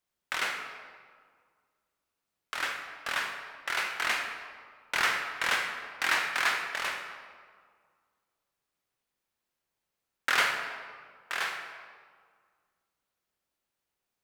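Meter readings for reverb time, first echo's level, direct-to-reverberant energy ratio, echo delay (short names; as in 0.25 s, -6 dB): 1.9 s, none, 3.0 dB, none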